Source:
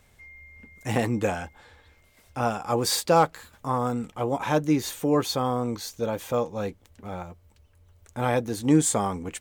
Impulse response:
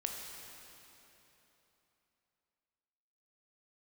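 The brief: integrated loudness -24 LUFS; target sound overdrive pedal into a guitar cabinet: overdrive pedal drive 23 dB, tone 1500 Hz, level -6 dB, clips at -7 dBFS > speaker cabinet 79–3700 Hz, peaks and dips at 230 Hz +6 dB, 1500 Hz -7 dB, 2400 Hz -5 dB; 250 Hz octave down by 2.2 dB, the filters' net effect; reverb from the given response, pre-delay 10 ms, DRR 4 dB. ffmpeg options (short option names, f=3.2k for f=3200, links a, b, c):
-filter_complex "[0:a]equalizer=f=250:t=o:g=-5.5,asplit=2[a][b];[1:a]atrim=start_sample=2205,adelay=10[c];[b][c]afir=irnorm=-1:irlink=0,volume=-5dB[d];[a][d]amix=inputs=2:normalize=0,asplit=2[e][f];[f]highpass=f=720:p=1,volume=23dB,asoftclip=type=tanh:threshold=-7dB[g];[e][g]amix=inputs=2:normalize=0,lowpass=f=1.5k:p=1,volume=-6dB,highpass=79,equalizer=f=230:t=q:w=4:g=6,equalizer=f=1.5k:t=q:w=4:g=-7,equalizer=f=2.4k:t=q:w=4:g=-5,lowpass=f=3.7k:w=0.5412,lowpass=f=3.7k:w=1.3066,volume=-4dB"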